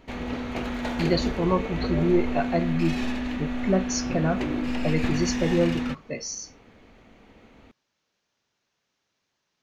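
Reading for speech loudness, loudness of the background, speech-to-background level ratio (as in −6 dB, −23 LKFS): −27.0 LKFS, −29.5 LKFS, 2.5 dB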